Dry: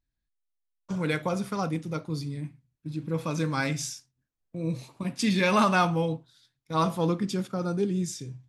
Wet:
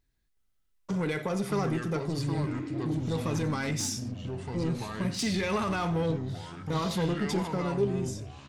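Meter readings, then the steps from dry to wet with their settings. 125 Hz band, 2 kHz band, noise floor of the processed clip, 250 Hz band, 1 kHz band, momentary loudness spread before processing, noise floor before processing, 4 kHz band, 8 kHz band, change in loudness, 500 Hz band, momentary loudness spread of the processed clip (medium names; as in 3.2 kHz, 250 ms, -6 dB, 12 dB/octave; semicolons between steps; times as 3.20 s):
+0.5 dB, -5.0 dB, -72 dBFS, -1.5 dB, -5.5 dB, 14 LU, -83 dBFS, -1.0 dB, +0.5 dB, -2.5 dB, -1.0 dB, 6 LU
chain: fade out at the end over 1.65 s; in parallel at +2.5 dB: compression, threshold -38 dBFS, peak gain reduction 18.5 dB; on the sum: peak limiter -19.5 dBFS, peak gain reduction 9.5 dB; spectral replace 2.49–2.96 s, 260–5600 Hz; saturation -24.5 dBFS, distortion -16 dB; small resonant body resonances 410/2000 Hz, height 8 dB; on a send: delay 90 ms -18.5 dB; on the sum: ever faster or slower copies 370 ms, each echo -4 st, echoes 3, each echo -6 dB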